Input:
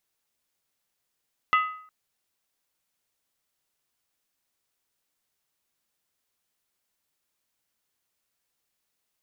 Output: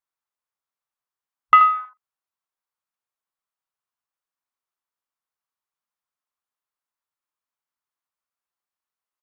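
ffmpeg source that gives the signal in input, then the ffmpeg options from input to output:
-f lavfi -i "aevalsrc='0.158*pow(10,-3*t/0.58)*sin(2*PI*1260*t)+0.0794*pow(10,-3*t/0.459)*sin(2*PI*2008.4*t)+0.0398*pow(10,-3*t/0.397)*sin(2*PI*2691.4*t)+0.02*pow(10,-3*t/0.383)*sin(2*PI*2893*t)+0.01*pow(10,-3*t/0.356)*sin(2*PI*3342.8*t)':d=0.36:s=44100"
-filter_complex "[0:a]afwtdn=0.00708,equalizer=f=1.1k:t=o:w=1.3:g=13.5,asplit=2[a][b];[b]aecho=0:1:81:0.299[c];[a][c]amix=inputs=2:normalize=0"

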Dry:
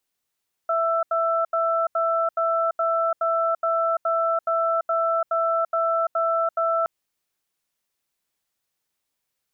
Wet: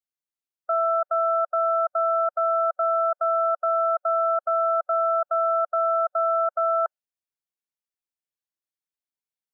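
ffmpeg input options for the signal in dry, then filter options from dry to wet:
-f lavfi -i "aevalsrc='0.0794*(sin(2*PI*662*t)+sin(2*PI*1330*t))*clip(min(mod(t,0.42),0.34-mod(t,0.42))/0.005,0,1)':d=6.17:s=44100"
-af "afftdn=nr=18:nf=-34"

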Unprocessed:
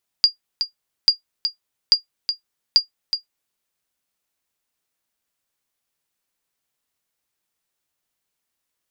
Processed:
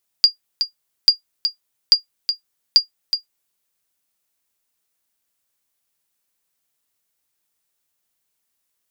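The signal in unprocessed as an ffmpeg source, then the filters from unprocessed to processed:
-f lavfi -i "aevalsrc='0.631*(sin(2*PI*4810*mod(t,0.84))*exp(-6.91*mod(t,0.84)/0.12)+0.376*sin(2*PI*4810*max(mod(t,0.84)-0.37,0))*exp(-6.91*max(mod(t,0.84)-0.37,0)/0.12))':d=3.36:s=44100"
-af "highshelf=f=6.3k:g=7"

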